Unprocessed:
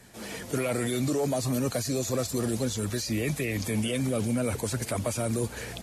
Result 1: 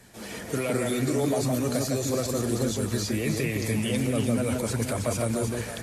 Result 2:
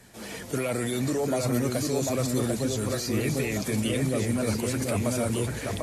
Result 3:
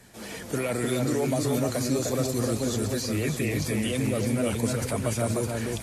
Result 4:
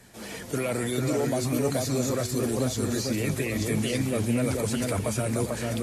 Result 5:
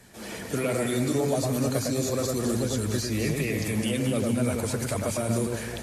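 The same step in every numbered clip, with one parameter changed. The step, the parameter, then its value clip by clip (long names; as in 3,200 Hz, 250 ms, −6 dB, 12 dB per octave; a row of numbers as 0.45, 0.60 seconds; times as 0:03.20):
delay that swaps between a low-pass and a high-pass, delay time: 161, 745, 304, 445, 105 milliseconds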